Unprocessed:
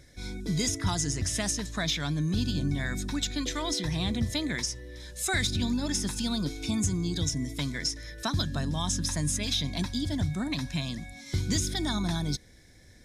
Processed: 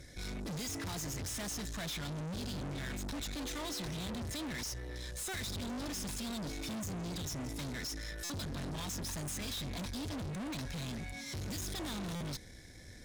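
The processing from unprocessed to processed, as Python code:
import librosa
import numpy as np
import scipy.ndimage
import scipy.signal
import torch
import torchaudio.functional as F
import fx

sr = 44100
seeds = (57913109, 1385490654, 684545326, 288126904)

y = fx.tube_stage(x, sr, drive_db=43.0, bias=0.45)
y = fx.buffer_glitch(y, sr, at_s=(8.24, 12.15), block=256, repeats=9)
y = F.gain(torch.from_numpy(y), 4.5).numpy()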